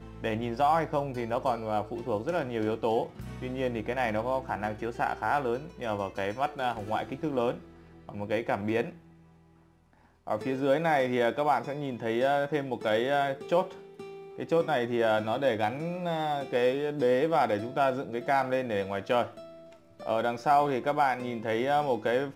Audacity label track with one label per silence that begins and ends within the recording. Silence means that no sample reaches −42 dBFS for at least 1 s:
8.970000	10.270000	silence